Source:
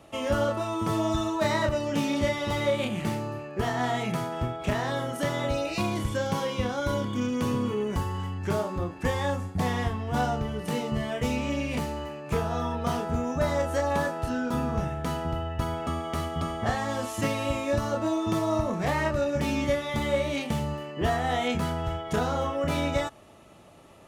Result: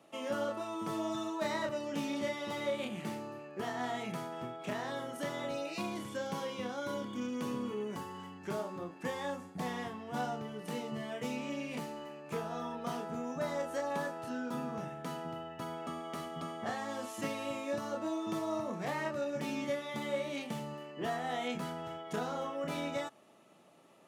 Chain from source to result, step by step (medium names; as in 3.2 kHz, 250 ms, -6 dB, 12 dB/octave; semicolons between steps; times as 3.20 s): high-pass 160 Hz 24 dB/octave; trim -9 dB